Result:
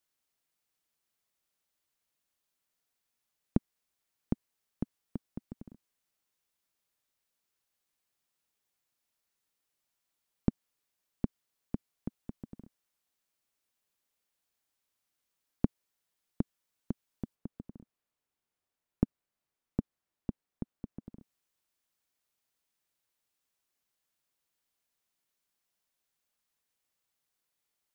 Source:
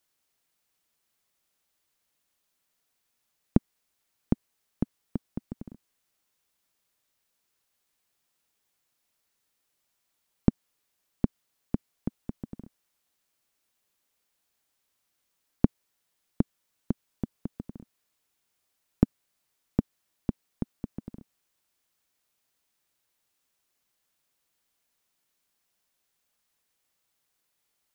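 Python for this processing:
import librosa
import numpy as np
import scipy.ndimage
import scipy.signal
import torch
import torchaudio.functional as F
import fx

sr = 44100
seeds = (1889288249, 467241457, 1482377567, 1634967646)

y = fx.high_shelf(x, sr, hz=2300.0, db=-9.0, at=(17.34, 21.18), fade=0.02)
y = y * librosa.db_to_amplitude(-6.5)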